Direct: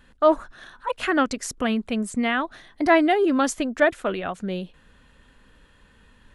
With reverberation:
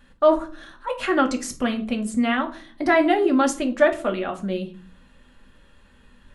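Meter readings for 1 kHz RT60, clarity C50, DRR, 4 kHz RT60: 0.40 s, 14.0 dB, 3.0 dB, 0.30 s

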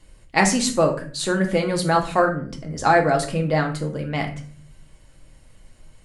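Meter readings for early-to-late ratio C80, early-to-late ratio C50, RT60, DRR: 15.0 dB, 10.5 dB, 0.45 s, 2.0 dB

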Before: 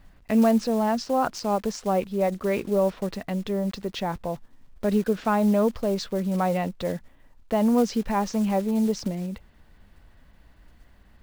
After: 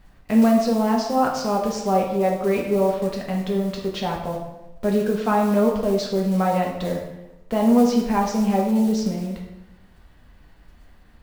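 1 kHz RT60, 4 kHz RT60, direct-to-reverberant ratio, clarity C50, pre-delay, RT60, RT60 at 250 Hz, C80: 0.95 s, 0.75 s, -1.0 dB, 4.5 dB, 3 ms, 1.0 s, 0.95 s, 7.0 dB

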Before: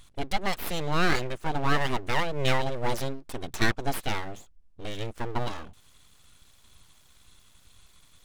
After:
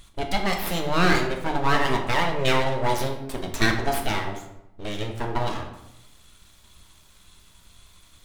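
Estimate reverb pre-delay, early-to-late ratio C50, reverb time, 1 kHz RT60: 3 ms, 7.5 dB, 0.85 s, 0.85 s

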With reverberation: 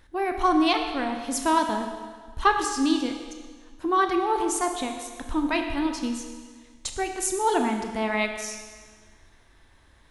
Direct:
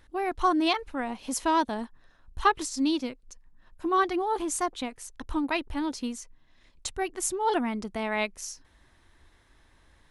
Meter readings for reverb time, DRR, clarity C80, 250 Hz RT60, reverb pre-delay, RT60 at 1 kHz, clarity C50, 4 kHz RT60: 1.6 s, 4.5 dB, 7.0 dB, 1.6 s, 23 ms, 1.6 s, 6.0 dB, 1.5 s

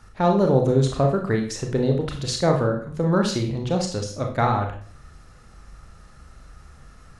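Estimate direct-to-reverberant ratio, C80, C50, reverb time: 2.5 dB, 11.5 dB, 7.0 dB, 0.50 s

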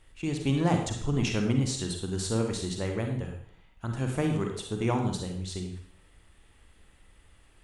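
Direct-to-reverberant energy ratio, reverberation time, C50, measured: 3.0 dB, 0.60 s, 4.5 dB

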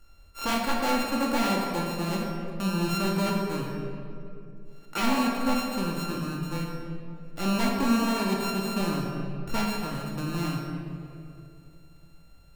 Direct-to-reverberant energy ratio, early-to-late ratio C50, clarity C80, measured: -2.0 dB, 1.0 dB, 2.5 dB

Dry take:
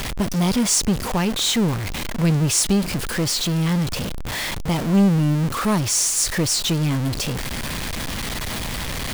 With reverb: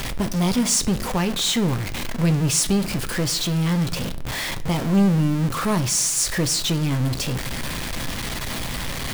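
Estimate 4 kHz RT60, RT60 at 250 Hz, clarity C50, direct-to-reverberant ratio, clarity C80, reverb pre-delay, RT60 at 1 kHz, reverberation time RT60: 0.40 s, 0.75 s, 17.5 dB, 9.5 dB, 21.0 dB, 6 ms, 0.55 s, 0.55 s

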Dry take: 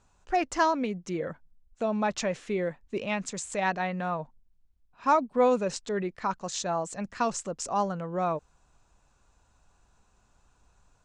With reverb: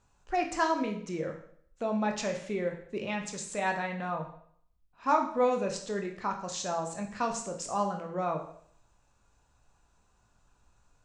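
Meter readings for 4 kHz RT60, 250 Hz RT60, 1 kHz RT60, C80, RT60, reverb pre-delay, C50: 0.60 s, 0.60 s, 0.60 s, 11.5 dB, 0.60 s, 18 ms, 8.5 dB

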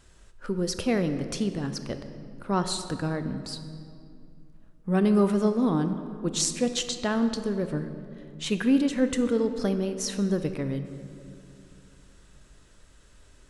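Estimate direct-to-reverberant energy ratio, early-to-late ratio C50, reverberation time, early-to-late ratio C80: 8.5 dB, 9.5 dB, 2.7 s, 10.5 dB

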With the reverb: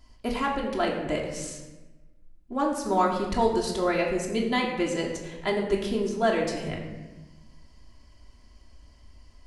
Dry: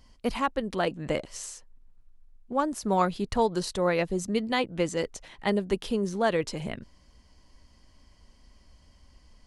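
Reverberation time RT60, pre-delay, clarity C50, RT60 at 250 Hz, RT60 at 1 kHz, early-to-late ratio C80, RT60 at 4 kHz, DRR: 1.2 s, 3 ms, 5.0 dB, 1.5 s, 1.1 s, 7.0 dB, 0.80 s, -2.0 dB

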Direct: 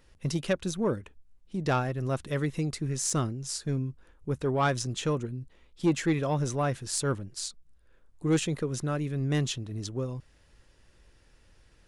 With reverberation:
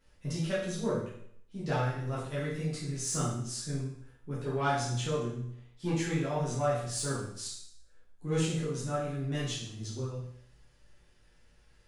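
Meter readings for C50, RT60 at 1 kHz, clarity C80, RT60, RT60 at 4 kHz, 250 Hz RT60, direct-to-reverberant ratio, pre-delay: 2.0 dB, 0.65 s, 6.0 dB, 0.65 s, 0.65 s, 0.65 s, -9.5 dB, 8 ms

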